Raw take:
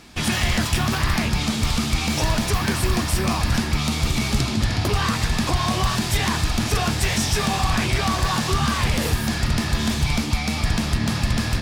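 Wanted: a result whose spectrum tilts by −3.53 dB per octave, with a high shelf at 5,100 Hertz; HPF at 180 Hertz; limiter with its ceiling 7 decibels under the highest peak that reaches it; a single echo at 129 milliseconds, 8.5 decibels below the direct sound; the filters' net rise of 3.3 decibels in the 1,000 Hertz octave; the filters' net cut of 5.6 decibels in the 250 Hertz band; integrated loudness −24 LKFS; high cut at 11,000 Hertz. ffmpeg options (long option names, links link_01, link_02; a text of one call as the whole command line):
ffmpeg -i in.wav -af "highpass=180,lowpass=11000,equalizer=frequency=250:width_type=o:gain=-5,equalizer=frequency=1000:width_type=o:gain=4,highshelf=frequency=5100:gain=6.5,alimiter=limit=-13.5dB:level=0:latency=1,aecho=1:1:129:0.376,volume=-1.5dB" out.wav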